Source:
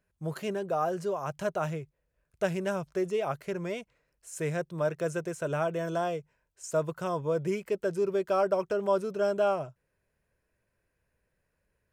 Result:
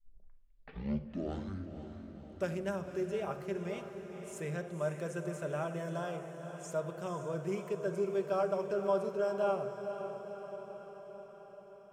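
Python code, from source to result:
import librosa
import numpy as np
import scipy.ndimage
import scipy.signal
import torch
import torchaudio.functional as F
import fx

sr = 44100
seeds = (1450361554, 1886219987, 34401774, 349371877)

y = fx.tape_start_head(x, sr, length_s=2.61)
y = fx.echo_diffused(y, sr, ms=509, feedback_pct=63, wet_db=-9)
y = fx.room_shoebox(y, sr, seeds[0], volume_m3=2400.0, walls='furnished', distance_m=1.2)
y = y * 10.0 ** (-8.0 / 20.0)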